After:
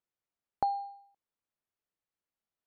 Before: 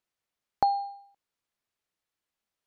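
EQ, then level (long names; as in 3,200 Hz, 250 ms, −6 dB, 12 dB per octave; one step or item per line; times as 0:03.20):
high-shelf EQ 2,300 Hz −10 dB
−4.5 dB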